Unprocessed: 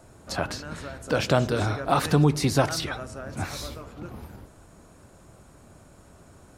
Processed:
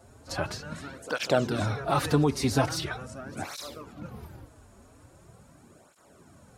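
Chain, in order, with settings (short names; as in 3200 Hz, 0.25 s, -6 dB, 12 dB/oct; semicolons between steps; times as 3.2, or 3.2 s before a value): pre-echo 53 ms -21 dB; tape flanging out of phase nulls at 0.42 Hz, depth 6.6 ms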